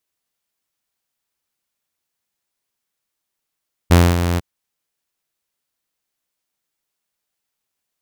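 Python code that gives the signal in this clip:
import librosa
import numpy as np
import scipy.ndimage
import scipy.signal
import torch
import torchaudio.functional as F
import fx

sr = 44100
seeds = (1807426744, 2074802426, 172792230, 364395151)

y = fx.adsr_tone(sr, wave='saw', hz=86.8, attack_ms=21.0, decay_ms=236.0, sustain_db=-9.5, held_s=0.48, release_ms=25.0, level_db=-4.0)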